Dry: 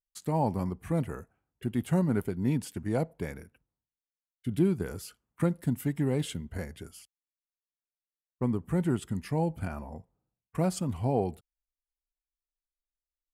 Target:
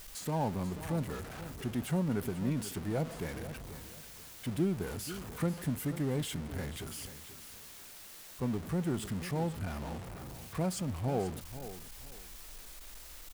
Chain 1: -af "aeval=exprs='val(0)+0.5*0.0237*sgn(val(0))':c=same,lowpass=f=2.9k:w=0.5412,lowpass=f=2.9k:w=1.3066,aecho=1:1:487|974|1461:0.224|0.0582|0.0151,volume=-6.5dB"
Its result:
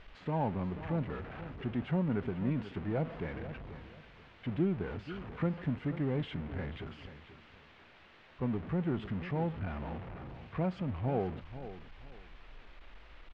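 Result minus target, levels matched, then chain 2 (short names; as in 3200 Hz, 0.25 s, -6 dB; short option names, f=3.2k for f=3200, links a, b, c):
4000 Hz band -7.0 dB
-af "aeval=exprs='val(0)+0.5*0.0237*sgn(val(0))':c=same,aecho=1:1:487|974|1461:0.224|0.0582|0.0151,volume=-6.5dB"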